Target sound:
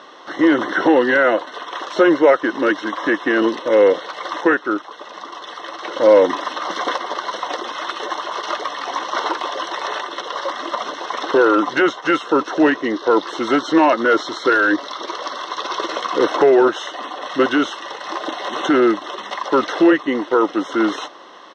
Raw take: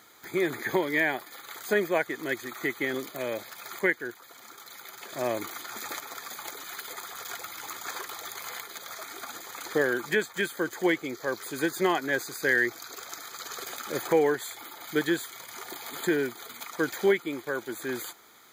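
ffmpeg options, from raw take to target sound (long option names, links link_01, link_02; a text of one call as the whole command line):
ffmpeg -i in.wav -af "asetrate=37926,aresample=44100,apsyclip=23.5dB,highpass=290,equalizer=frequency=330:width_type=q:width=4:gain=4,equalizer=frequency=520:width_type=q:width=4:gain=9,equalizer=frequency=1000:width_type=q:width=4:gain=5,equalizer=frequency=1700:width_type=q:width=4:gain=-3,equalizer=frequency=2800:width_type=q:width=4:gain=-4,lowpass=frequency=4400:width=0.5412,lowpass=frequency=4400:width=1.3066,volume=-9dB" out.wav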